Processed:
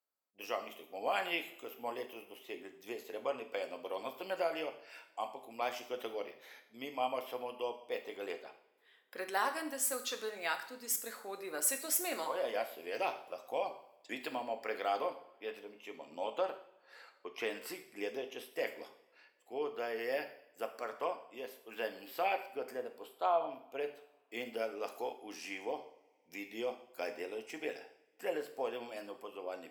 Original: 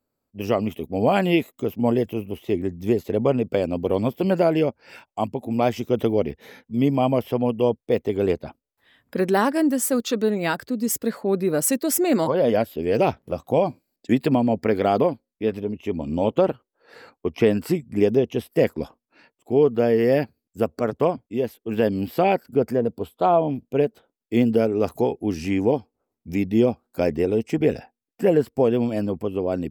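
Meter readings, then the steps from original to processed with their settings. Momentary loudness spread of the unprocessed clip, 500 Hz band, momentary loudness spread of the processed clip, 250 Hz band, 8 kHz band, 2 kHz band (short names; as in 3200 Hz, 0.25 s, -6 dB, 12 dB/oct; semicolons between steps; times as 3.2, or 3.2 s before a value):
8 LU, -17.5 dB, 13 LU, -27.0 dB, -8.0 dB, -8.0 dB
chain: HPF 860 Hz 12 dB/oct; two-slope reverb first 0.62 s, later 3.1 s, from -27 dB, DRR 5.5 dB; gain -9 dB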